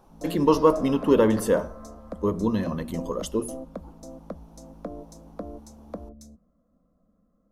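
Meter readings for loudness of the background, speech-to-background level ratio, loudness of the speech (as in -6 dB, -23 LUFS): -41.0 LUFS, 17.0 dB, -24.0 LUFS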